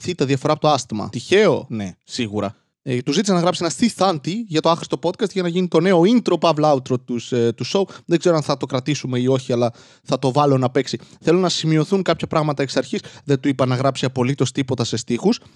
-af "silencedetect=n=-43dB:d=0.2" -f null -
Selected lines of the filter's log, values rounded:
silence_start: 2.52
silence_end: 2.86 | silence_duration: 0.34